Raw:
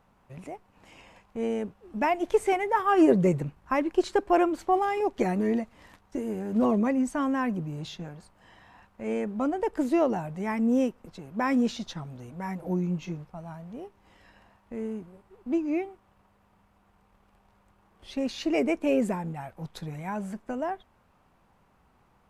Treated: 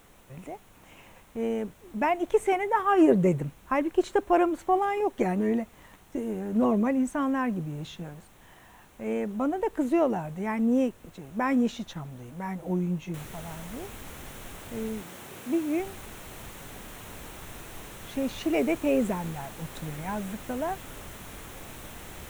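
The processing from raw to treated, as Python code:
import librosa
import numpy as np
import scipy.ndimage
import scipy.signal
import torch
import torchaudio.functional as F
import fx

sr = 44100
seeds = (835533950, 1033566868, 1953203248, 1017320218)

y = fx.noise_floor_step(x, sr, seeds[0], at_s=13.14, before_db=-56, after_db=-42, tilt_db=3.0)
y = fx.highpass(y, sr, hz=140.0, slope=12, at=(15.01, 15.8))
y = fx.peak_eq(y, sr, hz=4800.0, db=-10.5, octaves=0.41)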